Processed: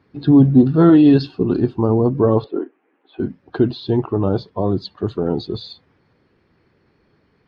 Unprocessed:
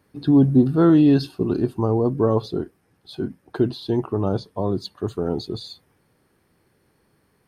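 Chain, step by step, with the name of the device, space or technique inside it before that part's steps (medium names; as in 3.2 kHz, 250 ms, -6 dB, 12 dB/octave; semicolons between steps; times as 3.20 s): 2.44–3.20 s: elliptic band-pass 270–2600 Hz, stop band 40 dB; clip after many re-uploads (low-pass 4.6 kHz 24 dB/octave; coarse spectral quantiser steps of 15 dB); trim +4.5 dB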